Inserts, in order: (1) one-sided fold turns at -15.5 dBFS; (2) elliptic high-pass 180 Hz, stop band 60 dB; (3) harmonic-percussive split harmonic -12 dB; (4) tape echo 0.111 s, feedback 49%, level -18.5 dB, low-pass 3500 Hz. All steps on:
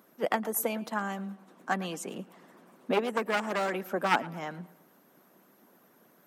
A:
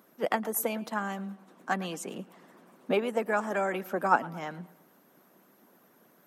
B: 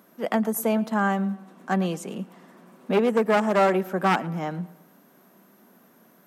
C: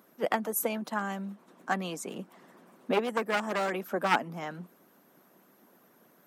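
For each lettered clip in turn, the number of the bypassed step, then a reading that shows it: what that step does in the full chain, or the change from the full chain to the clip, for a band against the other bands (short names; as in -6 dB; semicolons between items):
1, distortion -10 dB; 3, 125 Hz band +7.0 dB; 4, echo-to-direct -23.0 dB to none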